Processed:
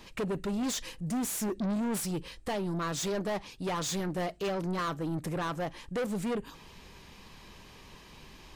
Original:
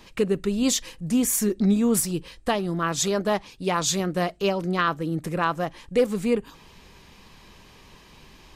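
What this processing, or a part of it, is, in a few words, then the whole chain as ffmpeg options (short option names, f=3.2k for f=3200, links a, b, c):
saturation between pre-emphasis and de-emphasis: -af "highshelf=f=6.4k:g=7,asoftclip=type=tanh:threshold=-27dB,highshelf=f=6.4k:g=-7,volume=-1.5dB"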